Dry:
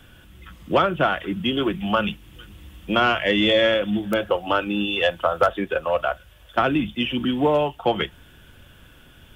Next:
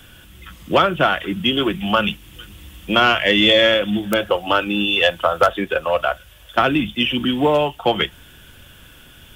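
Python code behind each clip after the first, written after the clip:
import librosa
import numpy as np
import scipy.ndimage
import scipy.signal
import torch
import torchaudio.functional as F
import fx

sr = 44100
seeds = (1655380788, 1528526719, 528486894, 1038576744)

y = fx.high_shelf(x, sr, hz=2500.0, db=8.0)
y = F.gain(torch.from_numpy(y), 2.5).numpy()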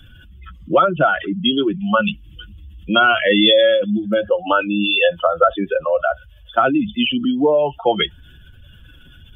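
y = fx.spec_expand(x, sr, power=2.0)
y = F.gain(torch.from_numpy(y), 1.5).numpy()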